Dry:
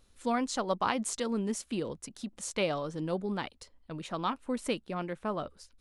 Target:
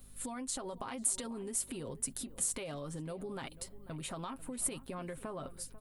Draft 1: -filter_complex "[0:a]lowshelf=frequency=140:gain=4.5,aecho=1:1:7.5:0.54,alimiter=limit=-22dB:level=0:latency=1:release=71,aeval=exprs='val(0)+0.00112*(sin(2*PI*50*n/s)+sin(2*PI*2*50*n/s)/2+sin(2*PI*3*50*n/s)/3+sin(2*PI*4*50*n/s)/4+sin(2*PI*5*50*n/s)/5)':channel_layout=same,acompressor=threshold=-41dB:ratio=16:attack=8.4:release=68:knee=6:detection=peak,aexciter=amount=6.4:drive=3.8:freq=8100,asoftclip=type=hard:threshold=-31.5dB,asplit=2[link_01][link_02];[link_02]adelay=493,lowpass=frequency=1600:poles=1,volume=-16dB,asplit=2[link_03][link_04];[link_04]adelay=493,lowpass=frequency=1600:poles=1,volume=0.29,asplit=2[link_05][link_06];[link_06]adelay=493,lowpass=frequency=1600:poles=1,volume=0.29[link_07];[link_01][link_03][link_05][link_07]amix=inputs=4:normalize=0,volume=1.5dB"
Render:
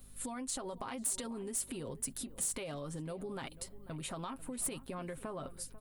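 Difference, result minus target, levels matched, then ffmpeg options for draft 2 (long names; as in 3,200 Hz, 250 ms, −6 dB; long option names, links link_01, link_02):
hard clipping: distortion +27 dB
-filter_complex "[0:a]lowshelf=frequency=140:gain=4.5,aecho=1:1:7.5:0.54,alimiter=limit=-22dB:level=0:latency=1:release=71,aeval=exprs='val(0)+0.00112*(sin(2*PI*50*n/s)+sin(2*PI*2*50*n/s)/2+sin(2*PI*3*50*n/s)/3+sin(2*PI*4*50*n/s)/4+sin(2*PI*5*50*n/s)/5)':channel_layout=same,acompressor=threshold=-41dB:ratio=16:attack=8.4:release=68:knee=6:detection=peak,aexciter=amount=6.4:drive=3.8:freq=8100,asoftclip=type=hard:threshold=-21.5dB,asplit=2[link_01][link_02];[link_02]adelay=493,lowpass=frequency=1600:poles=1,volume=-16dB,asplit=2[link_03][link_04];[link_04]adelay=493,lowpass=frequency=1600:poles=1,volume=0.29,asplit=2[link_05][link_06];[link_06]adelay=493,lowpass=frequency=1600:poles=1,volume=0.29[link_07];[link_01][link_03][link_05][link_07]amix=inputs=4:normalize=0,volume=1.5dB"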